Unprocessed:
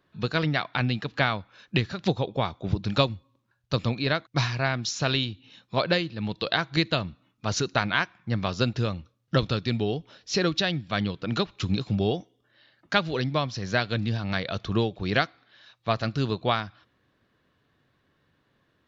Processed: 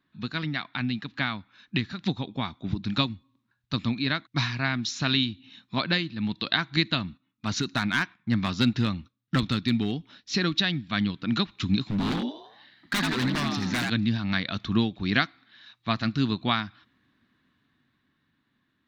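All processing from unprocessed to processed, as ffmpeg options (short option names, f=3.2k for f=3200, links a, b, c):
-filter_complex "[0:a]asettb=1/sr,asplit=3[a][b][c];[a]atrim=end=7.064[d];[b]atrim=start=7.06:end=10.35,asetpts=PTS-STARTPTS,afade=t=in:d=0.004:c=qsin,afade=t=out:st=3.286:d=0.004:c=qsin,agate=range=-10dB:threshold=-56dB:ratio=16:release=100:detection=peak,volume=18dB,asoftclip=hard,volume=-18dB[e];[c]atrim=start=10.346[f];[d][e]acrossfade=d=0.004:c1=hsin:c2=qsin[g];[g][f]acrossfade=d=0.004:c1=qsin:c2=hsin,asettb=1/sr,asplit=3[h][i][j];[h]atrim=end=11.904[k];[i]atrim=start=11.9:end=13.9,asetpts=PTS-STARTPTS,afade=t=in:d=0.004:c=qsin,afade=t=out:st=1.996:d=0.004:c=qsin,asplit=7[l][m][n][o][p][q][r];[m]adelay=82,afreqshift=66,volume=-6dB[s];[n]adelay=164,afreqshift=132,volume=-11.7dB[t];[o]adelay=246,afreqshift=198,volume=-17.4dB[u];[p]adelay=328,afreqshift=264,volume=-23dB[v];[q]adelay=410,afreqshift=330,volume=-28.7dB[w];[r]adelay=492,afreqshift=396,volume=-34.4dB[x];[l][s][t][u][v][w][x]amix=inputs=7:normalize=0,atrim=end_sample=88200,aeval=exprs='0.075*(abs(mod(val(0)/0.075+3,4)-2)-1)':c=same[y];[j]atrim=start=13.896[z];[k][y]acrossfade=d=0.004:c1=hsin:c2=qsin[aa];[aa][z]acrossfade=d=0.004:c1=qsin:c2=hsin,equalizer=f=3.8k:t=o:w=0.34:g=6.5,dynaudnorm=f=190:g=17:m=11.5dB,equalizer=f=250:t=o:w=1:g=12,equalizer=f=500:t=o:w=1:g=-11,equalizer=f=1k:t=o:w=1:g=3,equalizer=f=2k:t=o:w=1:g=6,volume=-9dB"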